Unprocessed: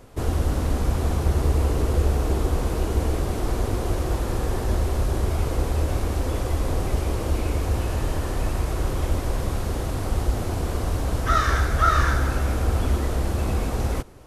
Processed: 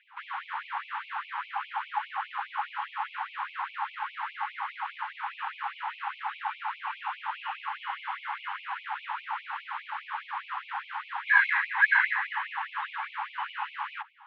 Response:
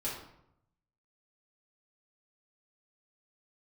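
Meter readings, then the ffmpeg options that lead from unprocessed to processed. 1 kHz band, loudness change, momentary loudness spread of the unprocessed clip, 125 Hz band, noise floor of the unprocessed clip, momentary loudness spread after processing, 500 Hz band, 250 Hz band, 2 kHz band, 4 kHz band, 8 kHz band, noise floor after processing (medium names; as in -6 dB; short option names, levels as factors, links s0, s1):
-2.0 dB, -7.0 dB, 6 LU, under -40 dB, -28 dBFS, 13 LU, under -40 dB, under -40 dB, +6.0 dB, -6.0 dB, under -40 dB, -50 dBFS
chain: -af "highpass=f=180:t=q:w=0.5412,highpass=f=180:t=q:w=1.307,lowpass=f=2800:t=q:w=0.5176,lowpass=f=2800:t=q:w=0.7071,lowpass=f=2800:t=q:w=1.932,afreqshift=350,tiltshelf=f=1500:g=4,afftfilt=real='re*gte(b*sr/1024,760*pow(2200/760,0.5+0.5*sin(2*PI*4.9*pts/sr)))':imag='im*gte(b*sr/1024,760*pow(2200/760,0.5+0.5*sin(2*PI*4.9*pts/sr)))':win_size=1024:overlap=0.75,volume=1.26"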